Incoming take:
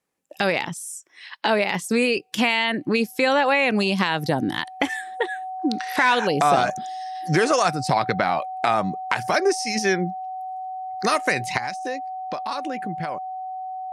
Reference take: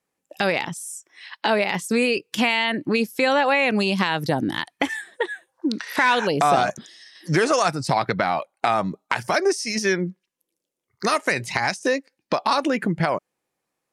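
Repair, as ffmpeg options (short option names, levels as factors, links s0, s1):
-af "bandreject=f=750:w=30,asetnsamples=n=441:p=0,asendcmd='11.58 volume volume 9dB',volume=1"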